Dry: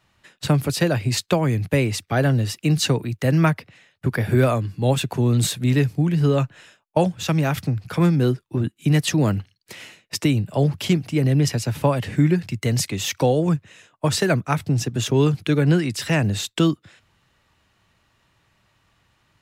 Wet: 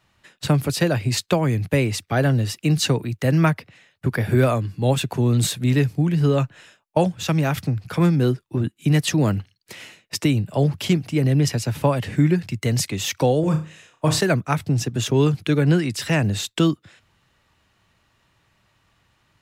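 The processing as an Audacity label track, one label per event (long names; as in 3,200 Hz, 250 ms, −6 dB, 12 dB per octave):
13.400000	14.210000	flutter between parallel walls apart 5.5 metres, dies away in 0.34 s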